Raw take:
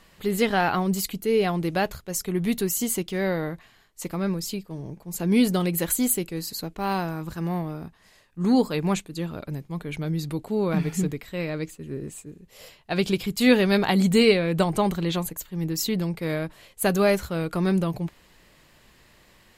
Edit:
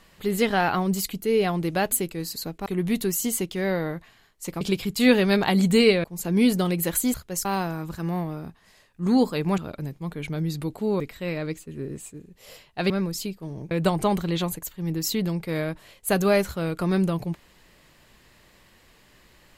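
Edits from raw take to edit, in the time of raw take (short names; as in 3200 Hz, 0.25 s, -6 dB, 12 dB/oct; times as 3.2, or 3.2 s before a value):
1.92–2.23 swap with 6.09–6.83
4.18–4.99 swap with 13.02–14.45
8.96–9.27 cut
10.69–11.12 cut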